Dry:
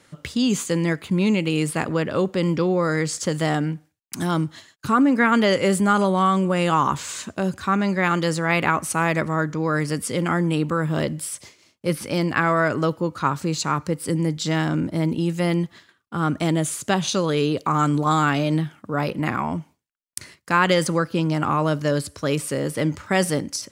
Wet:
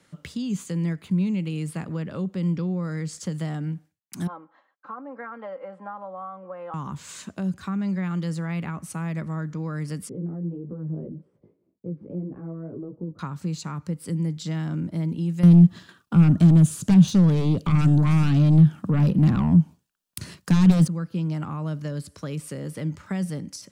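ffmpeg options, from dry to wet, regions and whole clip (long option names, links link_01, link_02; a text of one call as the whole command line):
ffmpeg -i in.wav -filter_complex "[0:a]asettb=1/sr,asplit=3[link_01][link_02][link_03];[link_01]atrim=end=4.274[link_04];[link_02]atrim=start=4.27:end=6.74,asetpts=PTS-STARTPTS,afade=type=in:duration=0.004:curve=qsin,afade=type=out:start_time=2.466:duration=0.004:curve=qsin,asuperpass=centerf=840:order=4:qfactor=1.1,aecho=1:1:3.8:0.66,atrim=end_sample=108927[link_05];[link_03]atrim=start=6.736[link_06];[link_04][link_05]acrossfade=duration=0.004:curve1=hsin:curve2=qsin[link_07];[link_07][link_06]acrossfade=duration=0.004:curve1=qsin:curve2=hsin,asettb=1/sr,asplit=3[link_08][link_09][link_10];[link_08]atrim=end=10.094[link_11];[link_09]atrim=start=10.09:end=13.19,asetpts=PTS-STARTPTS,afade=type=in:duration=0.004:curve=qsin,afade=type=out:start_time=3.096:duration=0.004:curve=qsin,acompressor=threshold=-24dB:ratio=4:attack=3.2:release=140:knee=1:detection=peak,flanger=delay=15:depth=4:speed=1.8,lowpass=frequency=410:width_type=q:width=2[link_12];[link_10]atrim=start=13.186[link_13];[link_11][link_12]acrossfade=duration=0.004:curve1=hsin:curve2=qsin[link_14];[link_14][link_13]acrossfade=duration=0.004:curve1=qsin:curve2=hsin,asettb=1/sr,asplit=3[link_15][link_16][link_17];[link_15]atrim=end=15.434[link_18];[link_16]atrim=start=15.43:end=20.88,asetpts=PTS-STARTPTS,afade=type=in:duration=0.004:curve=qsin,afade=type=out:start_time=5.446:duration=0.004:curve=qsin,equalizer=frequency=2100:width=6.6:gain=-11,aeval=exprs='0.596*sin(PI/2*4.47*val(0)/0.596)':channel_layout=same[link_19];[link_17]atrim=start=20.876[link_20];[link_18][link_19]acrossfade=duration=0.004:curve1=hsin:curve2=qsin[link_21];[link_21][link_20]acrossfade=duration=0.004:curve1=qsin:curve2=hsin,equalizer=frequency=180:width=3:gain=8,acrossover=split=220[link_22][link_23];[link_23]acompressor=threshold=-29dB:ratio=4[link_24];[link_22][link_24]amix=inputs=2:normalize=0,volume=-6.5dB" out.wav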